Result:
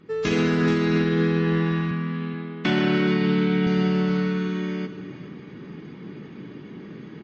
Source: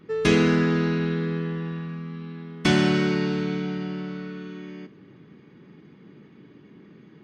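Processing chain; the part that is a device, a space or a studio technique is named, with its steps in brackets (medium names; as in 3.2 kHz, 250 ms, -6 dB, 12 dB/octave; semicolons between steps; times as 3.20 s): 1.91–3.67 s: Chebyshev band-pass 180–3100 Hz, order 2; delay 428 ms -13.5 dB; low-bitrate web radio (level rider gain up to 10.5 dB; peak limiter -12.5 dBFS, peak gain reduction 10 dB; MP3 32 kbps 24 kHz)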